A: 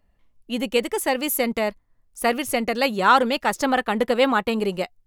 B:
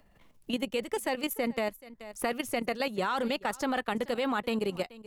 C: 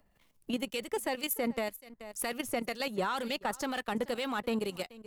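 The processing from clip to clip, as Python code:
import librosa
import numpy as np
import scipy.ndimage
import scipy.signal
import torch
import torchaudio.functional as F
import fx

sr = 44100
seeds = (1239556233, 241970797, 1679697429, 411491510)

y1 = fx.level_steps(x, sr, step_db=12)
y1 = y1 + 10.0 ** (-22.5 / 20.0) * np.pad(y1, (int(430 * sr / 1000.0), 0))[:len(y1)]
y1 = fx.band_squash(y1, sr, depth_pct=70)
y1 = y1 * librosa.db_to_amplitude(-5.0)
y2 = fx.high_shelf(y1, sr, hz=4900.0, db=6.5)
y2 = fx.leveller(y2, sr, passes=1)
y2 = fx.harmonic_tremolo(y2, sr, hz=2.0, depth_pct=50, crossover_hz=1800.0)
y2 = y2 * librosa.db_to_amplitude(-4.0)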